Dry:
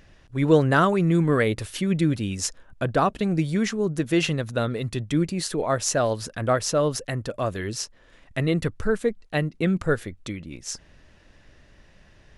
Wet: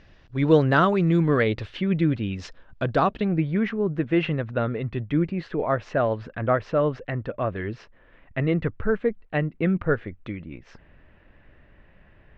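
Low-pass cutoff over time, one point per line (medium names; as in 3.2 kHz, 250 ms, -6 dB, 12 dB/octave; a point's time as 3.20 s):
low-pass 24 dB/octave
1.40 s 5.1 kHz
1.80 s 3.2 kHz
2.30 s 3.2 kHz
2.96 s 5.7 kHz
3.37 s 2.6 kHz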